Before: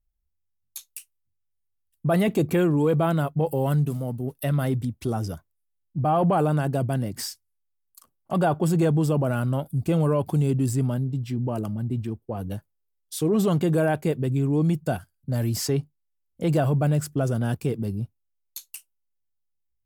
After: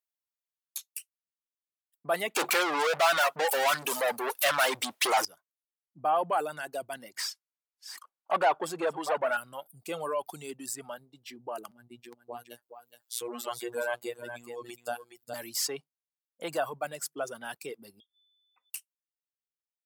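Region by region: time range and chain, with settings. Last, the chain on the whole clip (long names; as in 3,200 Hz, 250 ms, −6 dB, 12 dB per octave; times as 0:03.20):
0:02.36–0:05.25: low-shelf EQ 230 Hz −10.5 dB + mid-hump overdrive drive 40 dB, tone 4,600 Hz, clips at −13 dBFS
0:07.17–0:09.37: delay that plays each chunk backwards 406 ms, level −12 dB + mid-hump overdrive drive 19 dB, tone 1,400 Hz, clips at −11 dBFS
0:11.71–0:15.34: upward compression, threshold −36 dBFS + phases set to zero 120 Hz + single-tap delay 417 ms −6.5 dB
0:18.00–0:18.70: voice inversion scrambler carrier 3,500 Hz + comb filter 4 ms, depth 77% + downward compressor 12 to 1, threshold −57 dBFS
whole clip: reverb reduction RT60 2 s; high-pass filter 740 Hz 12 dB per octave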